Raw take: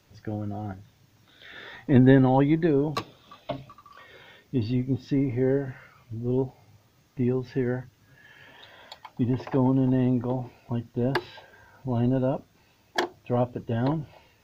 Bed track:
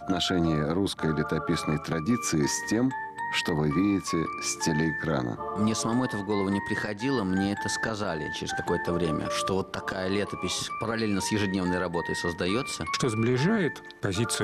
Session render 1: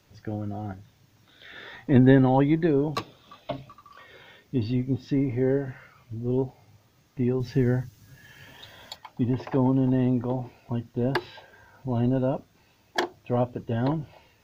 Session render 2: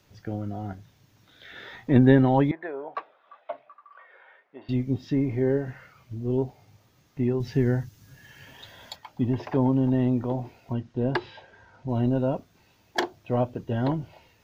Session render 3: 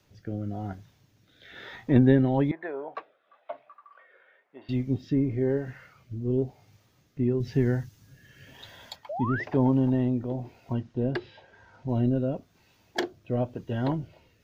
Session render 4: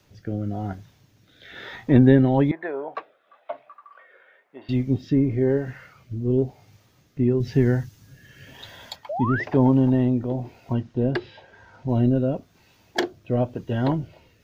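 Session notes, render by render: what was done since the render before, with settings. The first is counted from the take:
7.4–8.96 tone controls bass +8 dB, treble +10 dB
2.51–4.69 Chebyshev band-pass 630–1800 Hz; 10.73–11.89 air absorption 80 m
rotary speaker horn 1 Hz; 9.09–9.44 painted sound rise 550–2100 Hz -33 dBFS
gain +5 dB; limiter -3 dBFS, peak gain reduction 1.5 dB

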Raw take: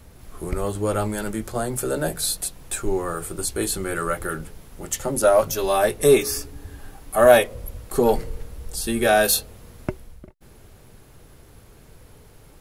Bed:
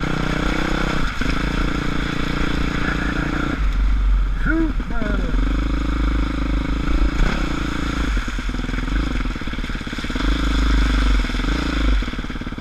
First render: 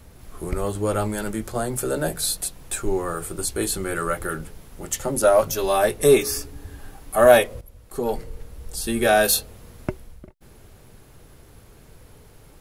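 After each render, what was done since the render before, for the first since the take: 7.61–9 fade in, from -14 dB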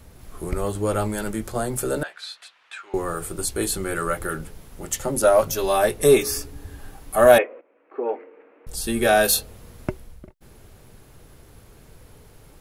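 2.03–2.94 Butterworth band-pass 2000 Hz, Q 0.88; 7.38–8.67 Chebyshev band-pass 280–2500 Hz, order 4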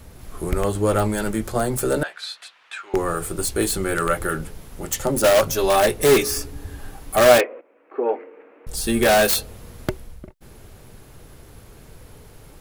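self-modulated delay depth 0.097 ms; in parallel at -5 dB: wrapped overs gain 13 dB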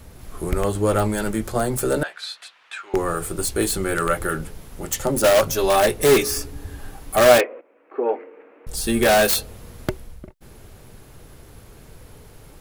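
nothing audible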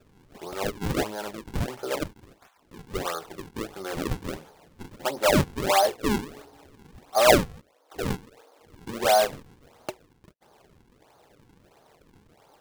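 band-pass 830 Hz, Q 2; decimation with a swept rate 41×, swing 160% 1.5 Hz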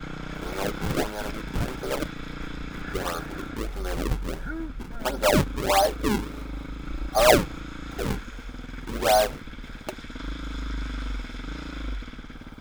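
add bed -14.5 dB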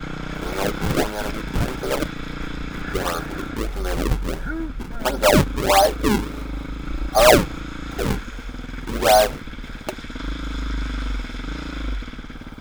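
gain +5.5 dB; limiter -3 dBFS, peak gain reduction 2.5 dB

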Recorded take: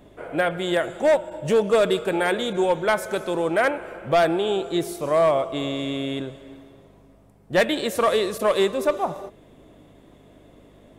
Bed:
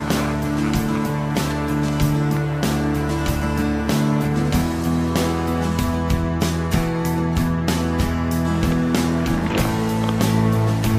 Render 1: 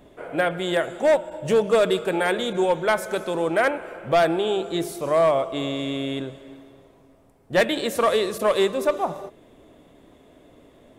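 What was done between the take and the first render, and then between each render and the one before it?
de-hum 50 Hz, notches 7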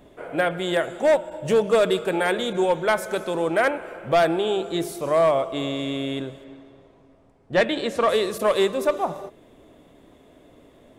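6.44–8.09 air absorption 73 m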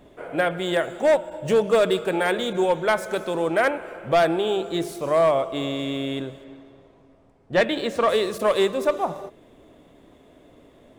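median filter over 3 samples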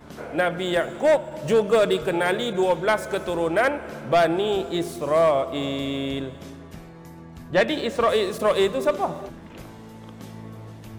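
add bed -22 dB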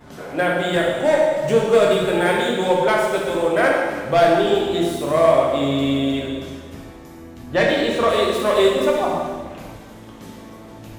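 plate-style reverb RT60 1.4 s, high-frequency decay 1×, pre-delay 0 ms, DRR -2.5 dB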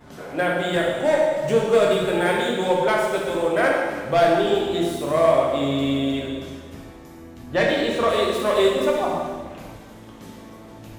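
gain -2.5 dB

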